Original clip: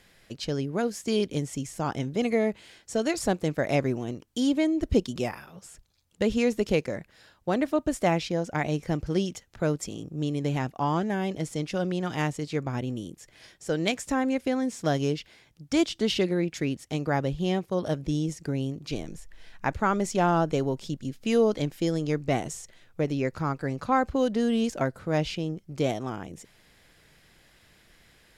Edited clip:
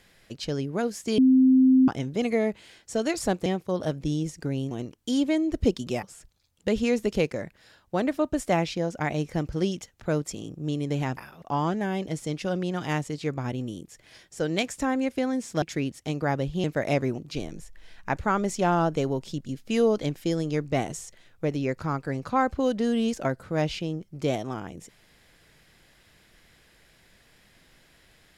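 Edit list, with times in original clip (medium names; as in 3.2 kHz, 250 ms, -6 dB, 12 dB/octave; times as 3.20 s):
1.18–1.88 s: bleep 260 Hz -14 dBFS
3.46–4.00 s: swap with 17.49–18.74 s
5.32–5.57 s: move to 10.71 s
14.91–16.47 s: delete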